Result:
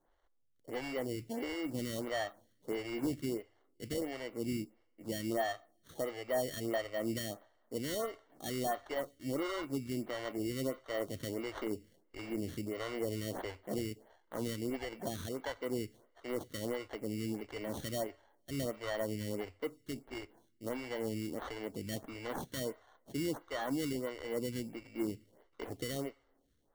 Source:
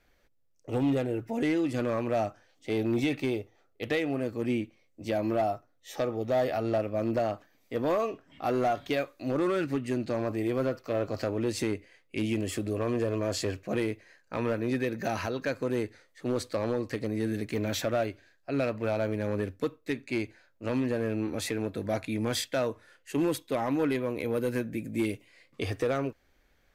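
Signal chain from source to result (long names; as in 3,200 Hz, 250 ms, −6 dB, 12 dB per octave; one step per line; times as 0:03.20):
sample-rate reduction 2,500 Hz, jitter 0%
coupled-rooms reverb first 0.53 s, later 2.2 s, from −22 dB, DRR 19.5 dB
phaser with staggered stages 1.5 Hz
level −5.5 dB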